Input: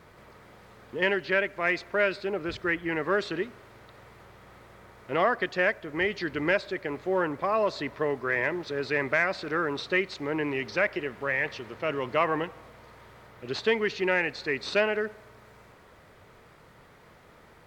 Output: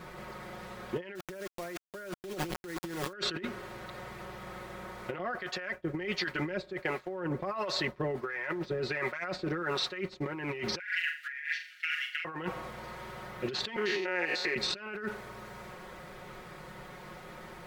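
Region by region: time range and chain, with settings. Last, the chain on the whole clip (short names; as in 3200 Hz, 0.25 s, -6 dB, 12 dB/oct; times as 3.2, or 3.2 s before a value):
1.15–3.13 LPF 1100 Hz + requantised 6-bit, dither none
5.18–10.26 compressor 2.5:1, threshold -27 dBFS + harmonic tremolo 1.4 Hz, crossover 530 Hz + expander -41 dBFS
10.79–12.25 gate -36 dBFS, range -10 dB + steep high-pass 1500 Hz 96 dB/oct + flutter echo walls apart 7 m, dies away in 0.38 s
13.76–14.56 stepped spectrum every 0.1 s + HPF 320 Hz + compressor 10:1, threshold -33 dBFS
whole clip: comb 5.5 ms, depth 76%; dynamic EQ 1400 Hz, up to +7 dB, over -45 dBFS, Q 6; negative-ratio compressor -36 dBFS, ratio -1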